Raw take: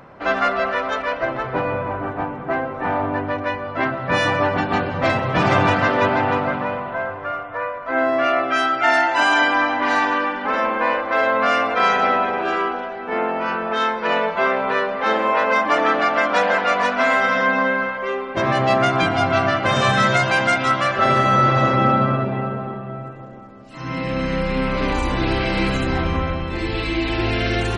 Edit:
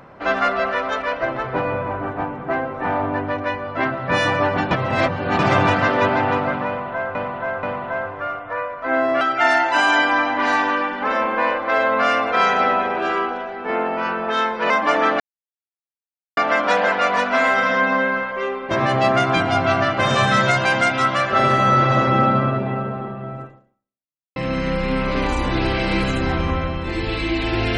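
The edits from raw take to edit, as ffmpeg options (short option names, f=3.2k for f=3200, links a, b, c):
-filter_complex "[0:a]asplit=9[a][b][c][d][e][f][g][h][i];[a]atrim=end=4.712[j];[b]atrim=start=4.708:end=5.392,asetpts=PTS-STARTPTS,areverse[k];[c]atrim=start=5.388:end=7.152[l];[d]atrim=start=6.668:end=7.152[m];[e]atrim=start=6.668:end=8.252[n];[f]atrim=start=8.638:end=14.132[o];[g]atrim=start=15.528:end=16.03,asetpts=PTS-STARTPTS,afade=t=out:st=0.498:d=0.004:c=hsin,apad=pad_dur=1.17[p];[h]atrim=start=16.03:end=24.02,asetpts=PTS-STARTPTS,afade=t=in:d=0.004:c=hsin,afade=t=out:st=7.08:d=0.91:c=exp[q];[i]atrim=start=24.02,asetpts=PTS-STARTPTS,afade=t=in:d=0.004:c=hsin[r];[j][k]acrossfade=d=0.004:c1=hsin:c2=hsin[s];[s][l]acrossfade=d=0.004:c1=hsin:c2=hsin[t];[t][m]acrossfade=d=0.004:c1=hsin:c2=hsin[u];[u][n]acrossfade=d=0.004:c1=hsin:c2=hsin[v];[v][o]acrossfade=d=0.004:c1=hsin:c2=hsin[w];[p][q][r]concat=n=3:v=0:a=1[x];[w][x]acrossfade=d=0.004:c1=hsin:c2=hsin"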